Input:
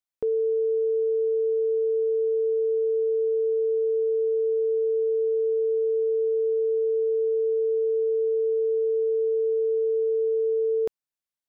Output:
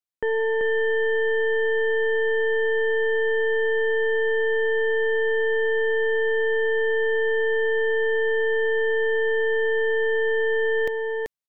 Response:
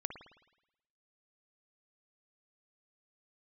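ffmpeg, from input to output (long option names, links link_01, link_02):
-af "aeval=exprs='0.0944*(cos(1*acos(clip(val(0)/0.0944,-1,1)))-cos(1*PI/2))+0.0211*(cos(2*acos(clip(val(0)/0.0944,-1,1)))-cos(2*PI/2))+0.0376*(cos(4*acos(clip(val(0)/0.0944,-1,1)))-cos(4*PI/2))+0.00473*(cos(7*acos(clip(val(0)/0.0944,-1,1)))-cos(7*PI/2))':channel_layout=same,aecho=1:1:385:0.631"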